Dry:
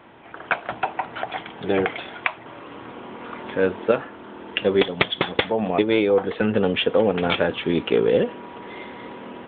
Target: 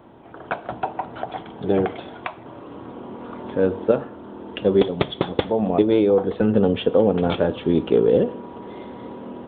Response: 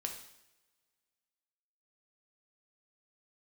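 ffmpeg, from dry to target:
-filter_complex "[0:a]equalizer=frequency=2200:width_type=o:width=1.7:gain=-15,asplit=2[link_01][link_02];[1:a]atrim=start_sample=2205,lowshelf=frequency=190:gain=10[link_03];[link_02][link_03]afir=irnorm=-1:irlink=0,volume=-11.5dB[link_04];[link_01][link_04]amix=inputs=2:normalize=0,volume=1.5dB"

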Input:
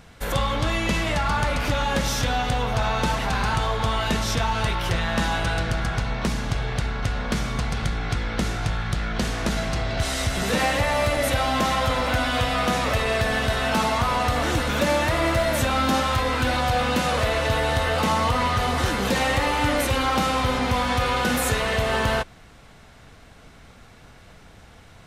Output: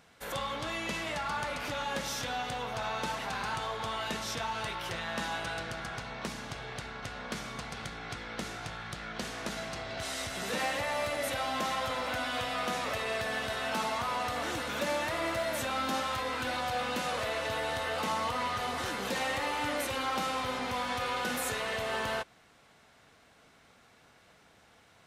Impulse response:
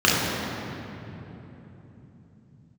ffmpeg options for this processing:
-af "highpass=frequency=330:poles=1,volume=-9dB"

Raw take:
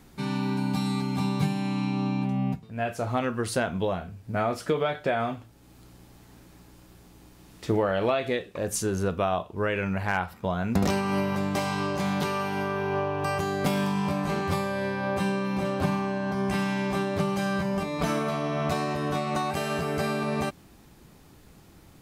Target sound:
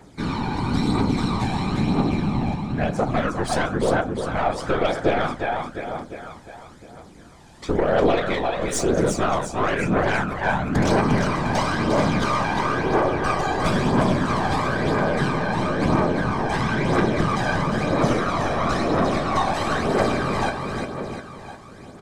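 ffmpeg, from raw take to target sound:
ffmpeg -i in.wav -filter_complex "[0:a]lowpass=frequency=8800:width=0.5412,lowpass=frequency=8800:width=1.3066,lowshelf=frequency=160:gain=-11.5,bandreject=frequency=2700:width=7.3,acrossover=split=140|6500[link_01][link_02][link_03];[link_03]acontrast=71[link_04];[link_01][link_02][link_04]amix=inputs=3:normalize=0,afftfilt=real='hypot(re,im)*cos(2*PI*random(0))':imag='hypot(re,im)*sin(2*PI*random(1))':win_size=512:overlap=0.75,aecho=1:1:353|706|1059|1412|1765|2118|2471:0.562|0.298|0.158|0.0837|0.0444|0.0235|0.0125,aeval=exprs='(tanh(20*val(0)+0.4)-tanh(0.4))/20':channel_layout=same,asplit=2[link_05][link_06];[link_06]adynamicsmooth=sensitivity=7:basefreq=4400,volume=2dB[link_07];[link_05][link_07]amix=inputs=2:normalize=0,aphaser=in_gain=1:out_gain=1:delay=1.3:decay=0.43:speed=1:type=triangular,volume=6.5dB" out.wav

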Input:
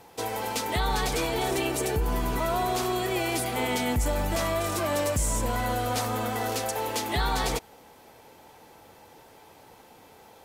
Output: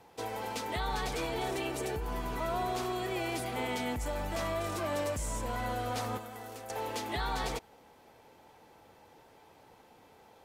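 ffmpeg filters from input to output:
ffmpeg -i in.wav -filter_complex "[0:a]highshelf=frequency=5900:gain=-7.5,asettb=1/sr,asplit=3[link_01][link_02][link_03];[link_01]atrim=end=6.174[link_04];[link_02]atrim=start=6.17:end=6.7,asetpts=PTS-STARTPTS,afade=type=in:duration=0.004:curve=qsin,afade=type=out:start_time=0.526:duration=0.004:curve=qsin,acrossover=split=390|2800|7400[link_05][link_06][link_07][link_08];[link_05]acompressor=threshold=-46dB:ratio=4[link_09];[link_06]acompressor=threshold=-40dB:ratio=4[link_10];[link_07]acompressor=threshold=-57dB:ratio=4[link_11];[link_08]acompressor=threshold=-48dB:ratio=4[link_12];[link_09][link_10][link_11][link_12]amix=inputs=4:normalize=0[link_13];[link_03]atrim=start=6.696[link_14];[link_04][link_13]acrossfade=duration=0.004:curve1=hsin:curve2=qsin[link_15];[link_15][link_14]acrossfade=duration=0.004:curve1=qsin:curve2=hsin,acrossover=split=490[link_16][link_17];[link_16]alimiter=level_in=2dB:limit=-24dB:level=0:latency=1,volume=-2dB[link_18];[link_18][link_17]amix=inputs=2:normalize=0,volume=-6dB" out.wav

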